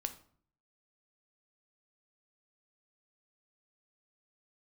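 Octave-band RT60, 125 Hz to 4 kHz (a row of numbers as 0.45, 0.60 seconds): 0.75, 0.70, 0.55, 0.50, 0.40, 0.35 seconds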